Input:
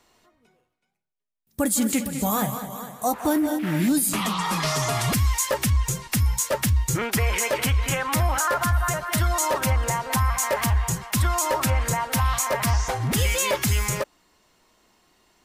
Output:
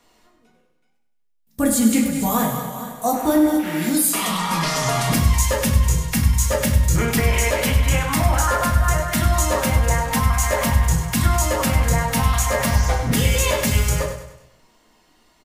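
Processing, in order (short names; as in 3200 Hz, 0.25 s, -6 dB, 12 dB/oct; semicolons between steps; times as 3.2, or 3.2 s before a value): 3.54–4.29 tone controls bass -13 dB, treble +3 dB; feedback echo 99 ms, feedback 46%, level -9.5 dB; reverb RT60 0.45 s, pre-delay 4 ms, DRR 0.5 dB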